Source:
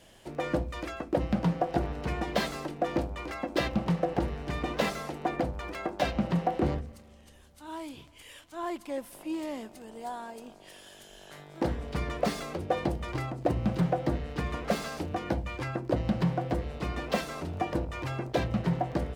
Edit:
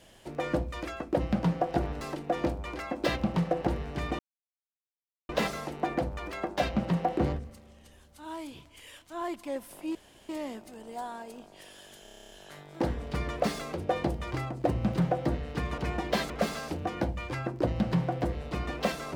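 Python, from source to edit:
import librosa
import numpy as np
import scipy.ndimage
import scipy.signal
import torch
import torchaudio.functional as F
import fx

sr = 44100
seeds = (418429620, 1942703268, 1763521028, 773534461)

y = fx.edit(x, sr, fx.move(start_s=2.01, length_s=0.52, to_s=14.59),
    fx.insert_silence(at_s=4.71, length_s=1.1),
    fx.insert_room_tone(at_s=9.37, length_s=0.34),
    fx.stutter(start_s=11.11, slice_s=0.03, count=10), tone=tone)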